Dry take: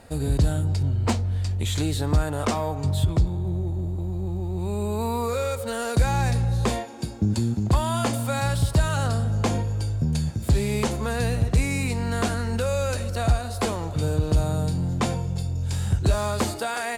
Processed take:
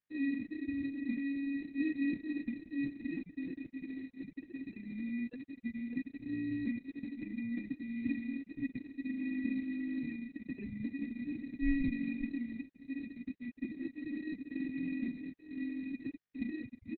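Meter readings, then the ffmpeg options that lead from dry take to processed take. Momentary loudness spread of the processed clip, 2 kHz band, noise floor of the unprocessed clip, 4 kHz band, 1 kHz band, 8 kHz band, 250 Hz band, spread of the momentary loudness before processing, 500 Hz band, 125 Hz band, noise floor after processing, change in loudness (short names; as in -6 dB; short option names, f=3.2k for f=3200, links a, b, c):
8 LU, -12.5 dB, -31 dBFS, under -25 dB, under -40 dB, under -40 dB, -6.0 dB, 5 LU, -26.5 dB, -31.0 dB, -62 dBFS, -14.0 dB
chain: -filter_complex "[0:a]asoftclip=type=hard:threshold=-28.5dB,adynamicsmooth=sensitivity=2.5:basefreq=7.6k,asplit=3[a][b][c];[a]bandpass=f=270:t=q:w=8,volume=0dB[d];[b]bandpass=f=2.29k:t=q:w=8,volume=-6dB[e];[c]bandpass=f=3.01k:t=q:w=8,volume=-9dB[f];[d][e][f]amix=inputs=3:normalize=0,areverse,acompressor=mode=upward:threshold=-51dB:ratio=2.5,areverse,equalizer=f=2.8k:t=o:w=2:g=4,asplit=2[g][h];[h]adelay=42,volume=-11dB[i];[g][i]amix=inputs=2:normalize=0,asplit=2[j][k];[k]aecho=0:1:525:0.211[l];[j][l]amix=inputs=2:normalize=0,acrusher=bits=4:mode=log:mix=0:aa=0.000001,afftfilt=real='re*gte(hypot(re,im),0.0316)':imag='im*gte(hypot(re,im),0.0316)':win_size=1024:overlap=0.75,adynamicequalizer=threshold=0.00224:dfrequency=210:dqfactor=1.6:tfrequency=210:tqfactor=1.6:attack=5:release=100:ratio=0.375:range=1.5:mode=cutabove:tftype=bell,acrusher=samples=20:mix=1:aa=0.000001,volume=9.5dB" -ar 48000 -c:a libopus -b:a 6k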